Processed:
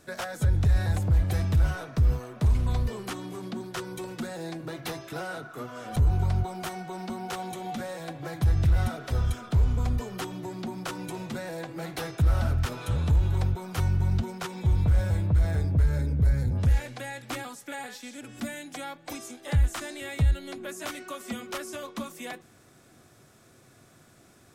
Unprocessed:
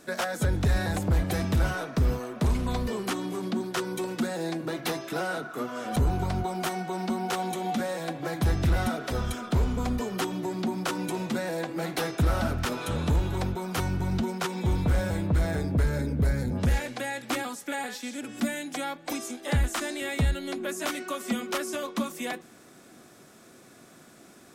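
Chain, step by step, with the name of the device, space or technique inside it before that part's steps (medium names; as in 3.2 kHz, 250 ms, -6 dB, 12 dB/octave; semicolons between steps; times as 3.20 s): car stereo with a boomy subwoofer (resonant low shelf 150 Hz +9 dB, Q 1.5; peak limiter -10.5 dBFS, peak gain reduction 5 dB); trim -4.5 dB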